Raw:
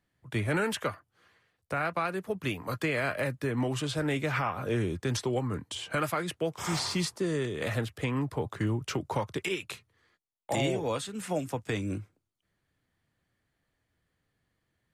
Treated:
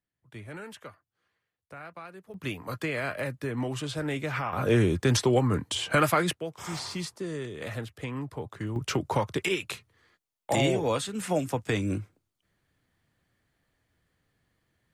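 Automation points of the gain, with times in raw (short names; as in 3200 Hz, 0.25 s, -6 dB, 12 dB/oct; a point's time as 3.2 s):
-13 dB
from 2.34 s -1.5 dB
from 4.53 s +7 dB
from 6.33 s -4.5 dB
from 8.76 s +4 dB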